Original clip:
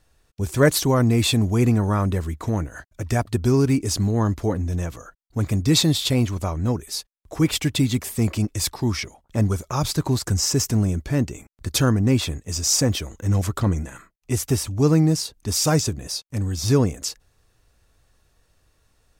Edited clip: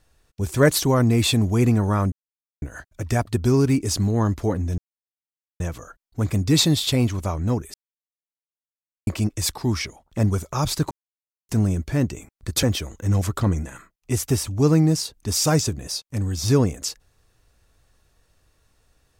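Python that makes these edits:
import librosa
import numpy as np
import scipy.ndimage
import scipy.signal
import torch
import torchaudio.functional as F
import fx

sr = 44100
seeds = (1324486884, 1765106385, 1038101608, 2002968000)

y = fx.edit(x, sr, fx.silence(start_s=2.12, length_s=0.5),
    fx.insert_silence(at_s=4.78, length_s=0.82),
    fx.silence(start_s=6.92, length_s=1.33),
    fx.silence(start_s=10.09, length_s=0.58),
    fx.cut(start_s=11.81, length_s=1.02), tone=tone)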